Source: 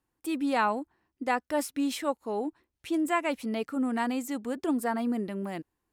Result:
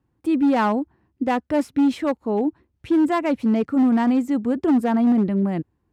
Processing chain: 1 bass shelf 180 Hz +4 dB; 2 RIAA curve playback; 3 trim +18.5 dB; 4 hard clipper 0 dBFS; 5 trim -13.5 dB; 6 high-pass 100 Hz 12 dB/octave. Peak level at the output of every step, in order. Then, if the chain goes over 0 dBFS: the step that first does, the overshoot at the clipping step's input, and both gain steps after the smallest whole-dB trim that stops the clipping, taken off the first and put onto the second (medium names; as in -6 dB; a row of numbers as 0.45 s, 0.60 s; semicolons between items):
-13.5 dBFS, -13.0 dBFS, +5.5 dBFS, 0.0 dBFS, -13.5 dBFS, -10.5 dBFS; step 3, 5.5 dB; step 3 +12.5 dB, step 5 -7.5 dB